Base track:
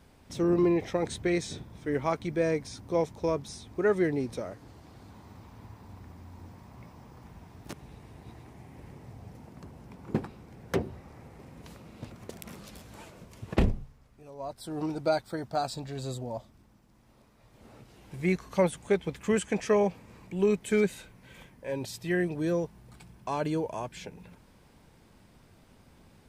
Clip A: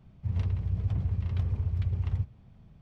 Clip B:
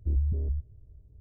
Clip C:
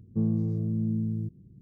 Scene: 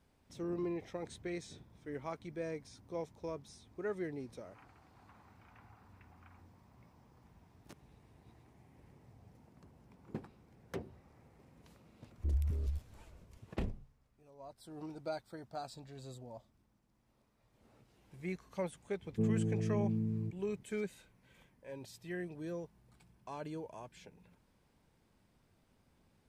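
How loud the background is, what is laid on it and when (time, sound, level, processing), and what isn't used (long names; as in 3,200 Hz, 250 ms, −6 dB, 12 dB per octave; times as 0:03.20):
base track −13.5 dB
0:04.19: mix in A −10 dB + single-sideband voice off tune +330 Hz 460–2,200 Hz
0:12.18: mix in B −6.5 dB
0:19.02: mix in C −6.5 dB + hollow resonant body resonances 420/700 Hz, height 15 dB, ringing for 90 ms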